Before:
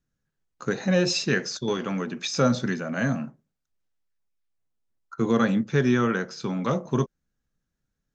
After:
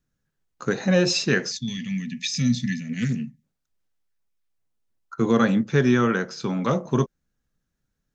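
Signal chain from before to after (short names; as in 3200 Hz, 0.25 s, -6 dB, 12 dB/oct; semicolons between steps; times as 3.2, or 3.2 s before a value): 1.51–3.43 spectral gain 270–1700 Hz -29 dB; 2.83–3.24 Doppler distortion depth 0.21 ms; gain +2.5 dB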